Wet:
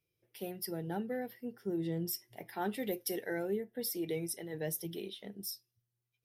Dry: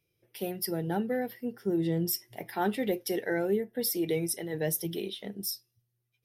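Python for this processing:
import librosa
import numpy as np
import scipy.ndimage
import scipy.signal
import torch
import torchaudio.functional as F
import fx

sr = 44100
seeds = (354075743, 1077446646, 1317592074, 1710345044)

y = fx.high_shelf(x, sr, hz=fx.line((2.74, 5500.0), (3.42, 8400.0)), db=9.5, at=(2.74, 3.42), fade=0.02)
y = F.gain(torch.from_numpy(y), -7.0).numpy()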